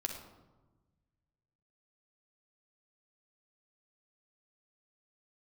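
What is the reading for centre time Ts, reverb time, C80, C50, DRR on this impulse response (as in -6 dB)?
31 ms, 1.2 s, 8.0 dB, 5.0 dB, 2.5 dB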